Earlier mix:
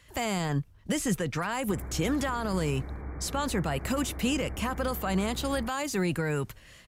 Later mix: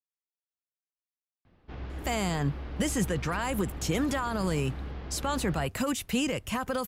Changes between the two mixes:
speech: entry +1.90 s; background: remove brick-wall FIR low-pass 2.4 kHz

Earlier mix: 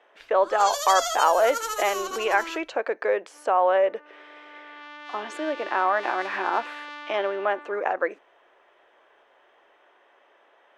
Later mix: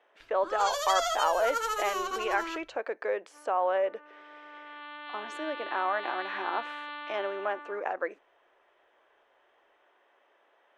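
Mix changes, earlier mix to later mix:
speech -7.0 dB; first sound: add tone controls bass +3 dB, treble -8 dB; second sound: add rippled Chebyshev low-pass 4.3 kHz, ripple 3 dB

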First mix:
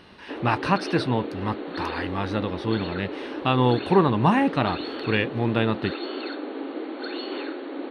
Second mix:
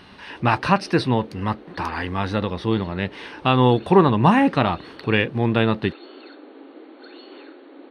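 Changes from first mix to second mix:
speech +4.0 dB; background -10.5 dB

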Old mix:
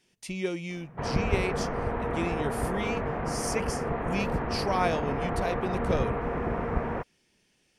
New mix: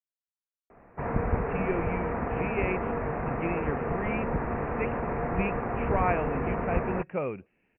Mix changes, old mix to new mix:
speech: entry +1.25 s; master: add steep low-pass 2.7 kHz 96 dB/octave

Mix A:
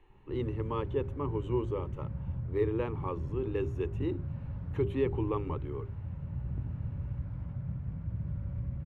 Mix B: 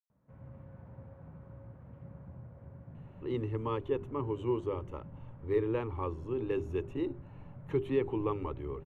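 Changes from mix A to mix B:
speech: entry +2.95 s; background: add band-pass filter 660 Hz, Q 0.66

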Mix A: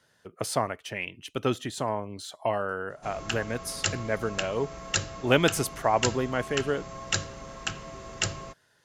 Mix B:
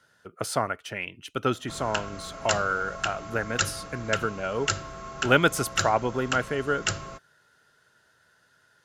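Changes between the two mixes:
background: entry -1.35 s; master: add peaking EQ 1.4 kHz +11 dB 0.22 oct

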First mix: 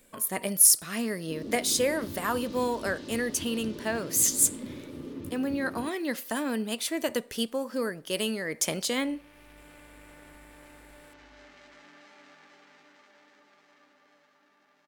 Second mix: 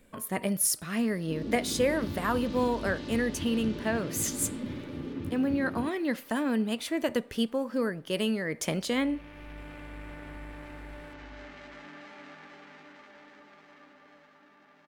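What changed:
first sound +6.5 dB; master: add tone controls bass +6 dB, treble -9 dB

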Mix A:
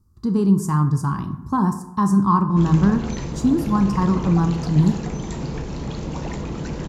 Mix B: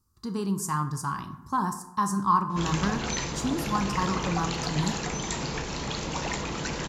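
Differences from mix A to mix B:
speech -6.0 dB; master: add tilt shelf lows -8 dB, about 660 Hz

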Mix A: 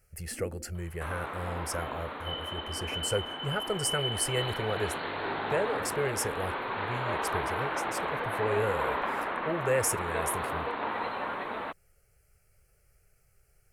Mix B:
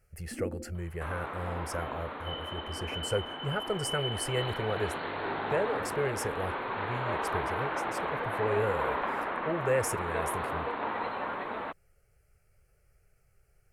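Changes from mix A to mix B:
first sound +6.5 dB; master: add treble shelf 3.6 kHz -7.5 dB

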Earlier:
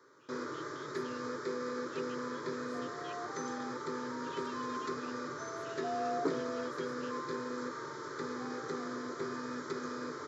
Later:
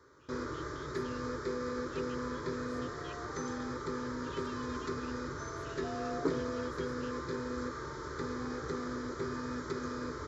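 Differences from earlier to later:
first sound: add high-pass 120 Hz 12 dB/octave; second sound -7.0 dB; master: remove Bessel high-pass 230 Hz, order 8

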